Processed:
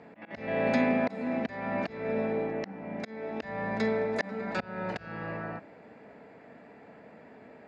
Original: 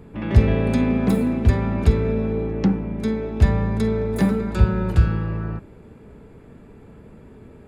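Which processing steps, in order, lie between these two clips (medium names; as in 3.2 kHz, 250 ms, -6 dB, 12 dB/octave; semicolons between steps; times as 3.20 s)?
slow attack 318 ms; cabinet simulation 330–5500 Hz, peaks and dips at 380 Hz -10 dB, 690 Hz +8 dB, 1.2 kHz -4 dB, 1.9 kHz +7 dB, 3.4 kHz -6 dB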